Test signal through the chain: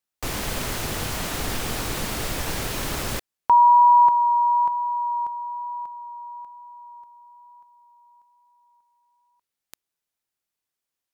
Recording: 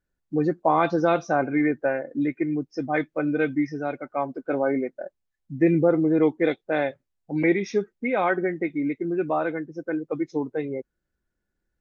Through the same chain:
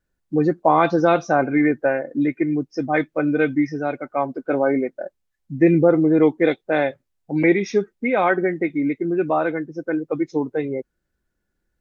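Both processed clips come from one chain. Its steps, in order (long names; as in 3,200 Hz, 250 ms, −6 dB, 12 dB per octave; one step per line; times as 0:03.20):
pitch vibrato 1.1 Hz 8.6 cents
level +4.5 dB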